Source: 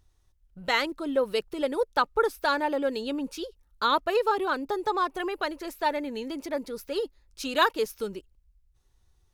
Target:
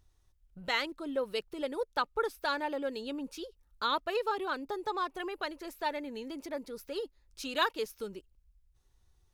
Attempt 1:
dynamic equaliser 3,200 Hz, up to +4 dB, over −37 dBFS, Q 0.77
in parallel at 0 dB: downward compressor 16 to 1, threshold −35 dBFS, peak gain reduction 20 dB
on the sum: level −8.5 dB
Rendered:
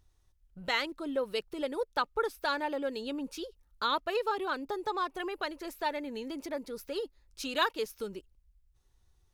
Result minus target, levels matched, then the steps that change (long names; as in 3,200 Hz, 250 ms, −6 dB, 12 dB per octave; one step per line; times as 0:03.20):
downward compressor: peak gain reduction −8 dB
change: downward compressor 16 to 1, threshold −43.5 dBFS, peak gain reduction 28 dB